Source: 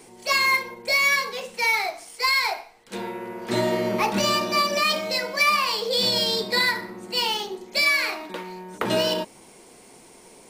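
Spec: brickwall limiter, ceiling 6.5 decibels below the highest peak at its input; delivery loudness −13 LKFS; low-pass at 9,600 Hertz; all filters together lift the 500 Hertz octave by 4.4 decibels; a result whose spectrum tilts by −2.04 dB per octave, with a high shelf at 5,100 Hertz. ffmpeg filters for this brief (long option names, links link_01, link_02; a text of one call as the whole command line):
ffmpeg -i in.wav -af "lowpass=9600,equalizer=frequency=500:width_type=o:gain=5.5,highshelf=frequency=5100:gain=8,volume=9.5dB,alimiter=limit=-3.5dB:level=0:latency=1" out.wav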